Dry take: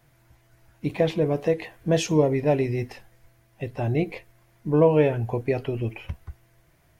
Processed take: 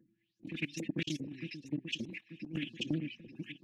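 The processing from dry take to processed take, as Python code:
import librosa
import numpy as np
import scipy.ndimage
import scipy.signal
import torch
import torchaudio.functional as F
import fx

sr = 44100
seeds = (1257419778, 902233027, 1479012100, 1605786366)

y = fx.spec_quant(x, sr, step_db=30)
y = scipy.signal.sosfilt(scipy.signal.ellip(3, 1.0, 80, [260.0, 2700.0], 'bandstop', fs=sr, output='sos'), y)
y = fx.high_shelf(y, sr, hz=6000.0, db=11.0)
y = y + 0.97 * np.pad(y, (int(6.0 * sr / 1000.0), 0))[:len(y)]
y = fx.level_steps(y, sr, step_db=23)
y = fx.env_lowpass(y, sr, base_hz=1500.0, full_db=-23.5)
y = fx.small_body(y, sr, hz=(240.0, 1700.0), ring_ms=25, db=15)
y = fx.filter_lfo_bandpass(y, sr, shape='saw_up', hz=1.3, low_hz=510.0, high_hz=7100.0, q=6.0)
y = fx.stretch_vocoder(y, sr, factor=0.52)
y = fx.echo_alternate(y, sr, ms=443, hz=1100.0, feedback_pct=64, wet_db=-10.0)
y = fx.over_compress(y, sr, threshold_db=-52.0, ratio=-0.5)
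y = fx.doppler_dist(y, sr, depth_ms=0.17)
y = y * librosa.db_to_amplitude(17.0)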